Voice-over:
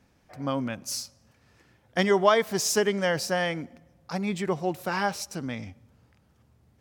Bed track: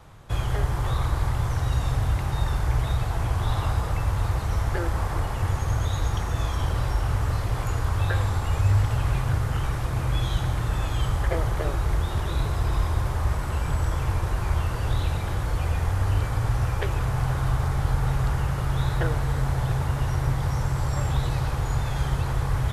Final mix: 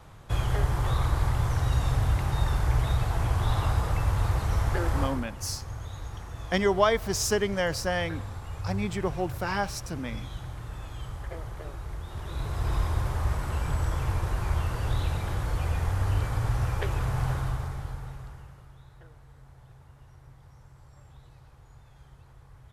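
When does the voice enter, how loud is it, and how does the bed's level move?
4.55 s, −2.0 dB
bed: 0:05.02 −1 dB
0:05.29 −13 dB
0:12.03 −13 dB
0:12.71 −3 dB
0:17.31 −3 dB
0:18.82 −27.5 dB

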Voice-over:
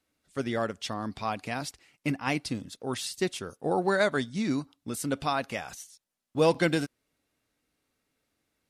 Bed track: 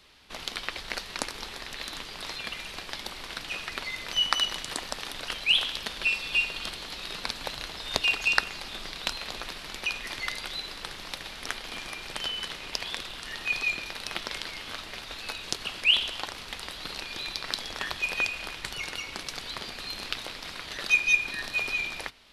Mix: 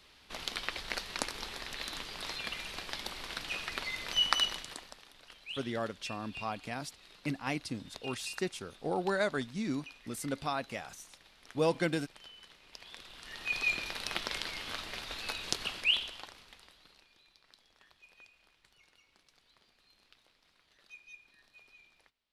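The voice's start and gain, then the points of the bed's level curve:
5.20 s, −6.0 dB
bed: 0:04.45 −3 dB
0:05.06 −20.5 dB
0:12.63 −20.5 dB
0:13.71 −2 dB
0:15.65 −2 dB
0:17.24 −30.5 dB

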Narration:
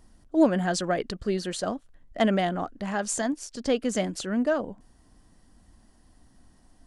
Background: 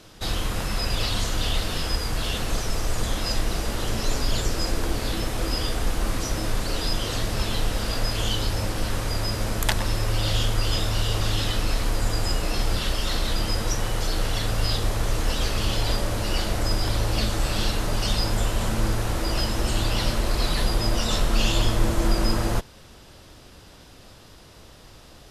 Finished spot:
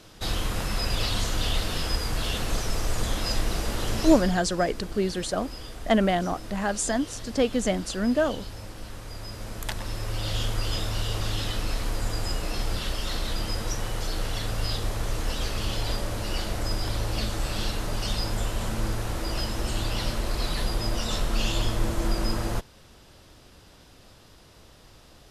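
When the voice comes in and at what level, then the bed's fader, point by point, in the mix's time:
3.70 s, +1.5 dB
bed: 0:04.10 −1.5 dB
0:04.43 −13.5 dB
0:09.01 −13.5 dB
0:10.45 −4.5 dB

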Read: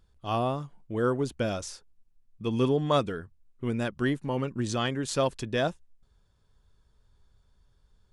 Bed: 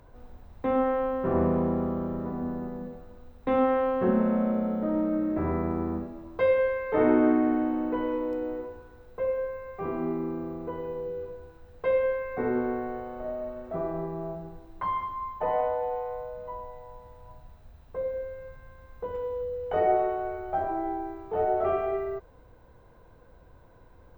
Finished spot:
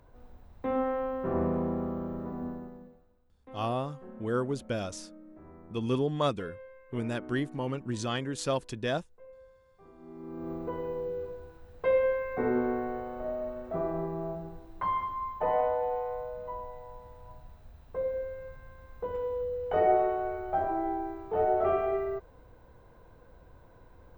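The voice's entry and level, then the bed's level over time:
3.30 s, −3.5 dB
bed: 0:02.47 −4.5 dB
0:03.30 −23.5 dB
0:09.97 −23.5 dB
0:10.51 −0.5 dB

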